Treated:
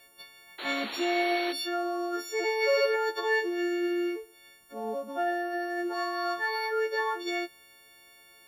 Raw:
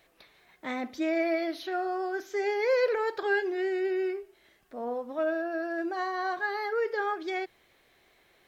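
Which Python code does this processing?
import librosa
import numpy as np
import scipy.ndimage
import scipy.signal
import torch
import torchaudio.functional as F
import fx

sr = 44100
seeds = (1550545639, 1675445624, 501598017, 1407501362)

y = fx.freq_snap(x, sr, grid_st=4)
y = fx.spec_paint(y, sr, seeds[0], shape='noise', start_s=0.58, length_s=0.95, low_hz=290.0, high_hz=4500.0, level_db=-39.0)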